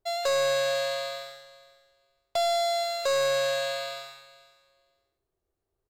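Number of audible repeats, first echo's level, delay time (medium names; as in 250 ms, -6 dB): 2, -19.0 dB, 481 ms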